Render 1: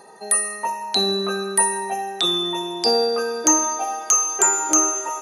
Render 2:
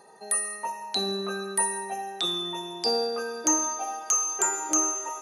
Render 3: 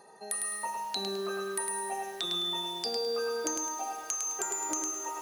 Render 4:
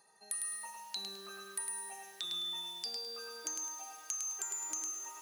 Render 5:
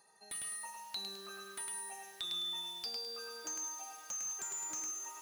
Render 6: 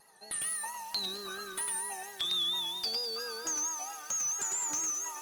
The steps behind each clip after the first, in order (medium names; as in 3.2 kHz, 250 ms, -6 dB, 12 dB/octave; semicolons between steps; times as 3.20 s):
gated-style reverb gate 260 ms falling, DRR 12 dB; trim -7.5 dB
compression 10:1, threshold -29 dBFS, peak gain reduction 11 dB; bit-crushed delay 105 ms, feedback 35%, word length 8-bit, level -4 dB; trim -2 dB
amplifier tone stack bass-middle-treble 5-5-5; trim +1.5 dB
slew-rate limiter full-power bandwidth 80 Hz
vibrato 4.4 Hz 75 cents; trim +7.5 dB; Opus 20 kbps 48 kHz